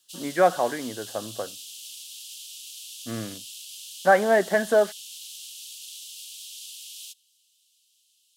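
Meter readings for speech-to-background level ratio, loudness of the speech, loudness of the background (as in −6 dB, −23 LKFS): 15.5 dB, −23.0 LKFS, −38.5 LKFS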